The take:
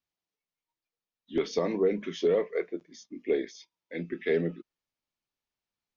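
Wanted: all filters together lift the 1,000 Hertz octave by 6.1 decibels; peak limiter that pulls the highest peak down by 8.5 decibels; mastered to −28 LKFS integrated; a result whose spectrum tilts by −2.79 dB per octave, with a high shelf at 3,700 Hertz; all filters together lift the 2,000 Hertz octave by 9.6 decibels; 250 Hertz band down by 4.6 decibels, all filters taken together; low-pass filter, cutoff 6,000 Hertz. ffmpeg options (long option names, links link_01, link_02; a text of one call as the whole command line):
ffmpeg -i in.wav -af "lowpass=6000,equalizer=frequency=250:width_type=o:gain=-8,equalizer=frequency=1000:width_type=o:gain=5.5,equalizer=frequency=2000:width_type=o:gain=8.5,highshelf=frequency=3700:gain=4,volume=4.5dB,alimiter=limit=-15dB:level=0:latency=1" out.wav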